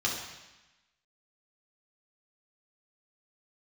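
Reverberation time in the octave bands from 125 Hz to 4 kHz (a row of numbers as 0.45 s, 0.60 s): 1.1 s, 1.1 s, 0.95 s, 1.1 s, 1.2 s, 1.1 s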